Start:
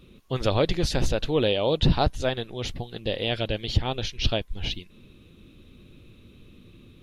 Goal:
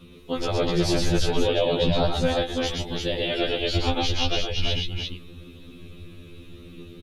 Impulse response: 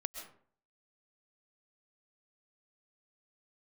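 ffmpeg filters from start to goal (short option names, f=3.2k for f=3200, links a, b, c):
-filter_complex "[0:a]asplit=2[a][b];[b]acompressor=threshold=-30dB:ratio=6,volume=0dB[c];[a][c]amix=inputs=2:normalize=0,alimiter=limit=-14dB:level=0:latency=1:release=31,aecho=1:1:119|133|344:0.631|0.398|0.668,afftfilt=real='re*2*eq(mod(b,4),0)':imag='im*2*eq(mod(b,4),0)':win_size=2048:overlap=0.75,volume=1dB"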